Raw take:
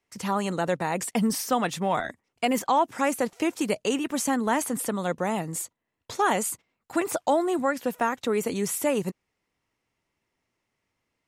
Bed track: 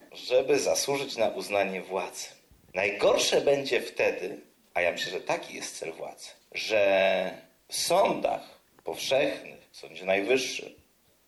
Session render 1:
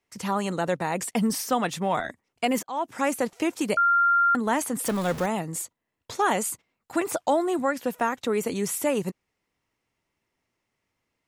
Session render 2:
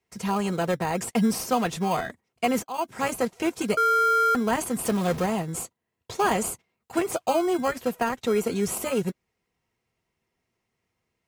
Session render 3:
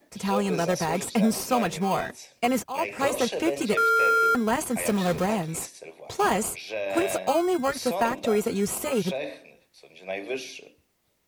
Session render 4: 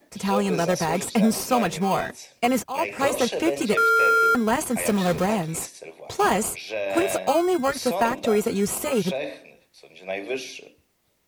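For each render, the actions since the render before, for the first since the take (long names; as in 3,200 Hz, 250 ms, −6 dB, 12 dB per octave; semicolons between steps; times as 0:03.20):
0:02.63–0:03.14: fade in equal-power; 0:03.77–0:04.35: beep over 1,390 Hz −17 dBFS; 0:04.85–0:05.26: converter with a step at zero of −30 dBFS
in parallel at −8.5 dB: decimation without filtering 24×; on the sum: notch comb filter 290 Hz
mix in bed track −7 dB
level +2.5 dB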